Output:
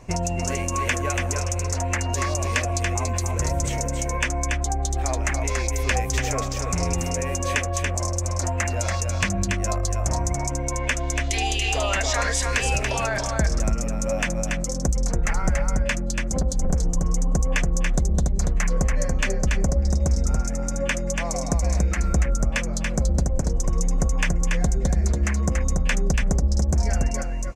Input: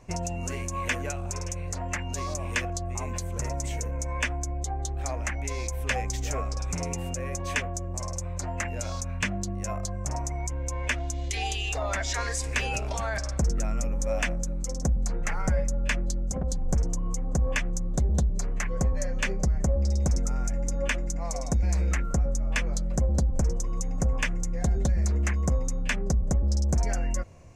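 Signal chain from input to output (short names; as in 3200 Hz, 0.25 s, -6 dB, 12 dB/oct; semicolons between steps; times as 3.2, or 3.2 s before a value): compressor, threshold -26 dBFS, peak gain reduction 6.5 dB; echo 0.284 s -4 dB; gain +7 dB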